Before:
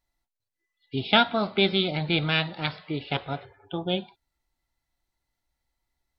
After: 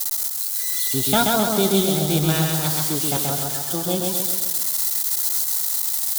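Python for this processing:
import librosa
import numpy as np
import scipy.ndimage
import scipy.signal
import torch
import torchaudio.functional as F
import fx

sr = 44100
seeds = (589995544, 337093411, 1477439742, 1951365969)

p1 = x + 0.5 * 10.0 ** (-17.0 / 20.0) * np.diff(np.sign(x), prepend=np.sign(x[:1]))
p2 = fx.peak_eq(p1, sr, hz=2400.0, db=-14.0, octaves=0.97)
p3 = fx.leveller(p2, sr, passes=1)
y = p3 + fx.echo_feedback(p3, sr, ms=131, feedback_pct=54, wet_db=-3.0, dry=0)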